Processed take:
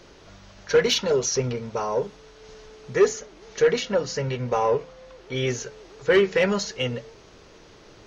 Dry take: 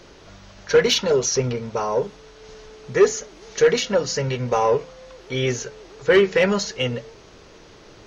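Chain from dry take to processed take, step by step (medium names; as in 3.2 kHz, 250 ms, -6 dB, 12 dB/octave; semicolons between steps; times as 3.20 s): 3.13–5.36 s: treble shelf 5.4 kHz -7 dB; trim -3 dB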